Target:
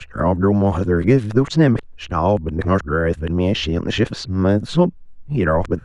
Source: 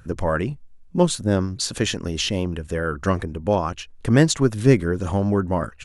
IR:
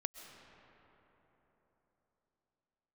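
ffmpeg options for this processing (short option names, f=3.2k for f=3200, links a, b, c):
-filter_complex "[0:a]areverse,acrossover=split=170|5100[a][b][c];[a]acompressor=threshold=-27dB:ratio=4[d];[b]acompressor=threshold=-20dB:ratio=4[e];[c]acompressor=threshold=-45dB:ratio=4[f];[d][e][f]amix=inputs=3:normalize=0,aemphasis=mode=reproduction:type=75fm,volume=6.5dB"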